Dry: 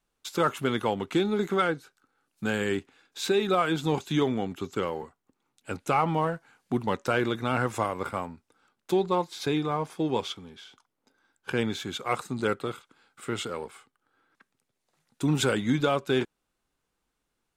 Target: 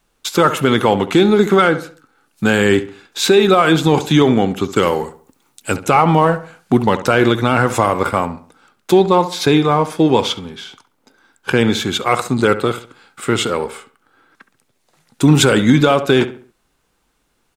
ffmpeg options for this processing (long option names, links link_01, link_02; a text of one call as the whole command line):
ffmpeg -i in.wav -filter_complex "[0:a]asettb=1/sr,asplit=3[link_01][link_02][link_03];[link_01]atrim=end=4.764[link_04];[link_02]atrim=start=4.76:end=5.76,asetpts=PTS-STARTPTS,afade=type=in:duration=0.004:curve=qsin,afade=type=out:start_time=0.996:duration=0.004:curve=qsin,highshelf=frequency=5000:gain=11.5[link_05];[link_03]atrim=start=5.756[link_06];[link_04][link_05]acrossfade=duration=0.004:curve1=hsin:curve2=qsin[link_07];[link_07][link_06]acrossfade=duration=0.004:curve1=qsin:curve2=hsin,asplit=2[link_08][link_09];[link_09]adelay=68,lowpass=frequency=2600:poles=1,volume=-14dB,asplit=2[link_10][link_11];[link_11]adelay=68,lowpass=frequency=2600:poles=1,volume=0.38,asplit=2[link_12][link_13];[link_13]adelay=68,lowpass=frequency=2600:poles=1,volume=0.38,asplit=2[link_14][link_15];[link_15]adelay=68,lowpass=frequency=2600:poles=1,volume=0.38[link_16];[link_08][link_10][link_12][link_14][link_16]amix=inputs=5:normalize=0,alimiter=level_in=16dB:limit=-1dB:release=50:level=0:latency=1,volume=-1dB" out.wav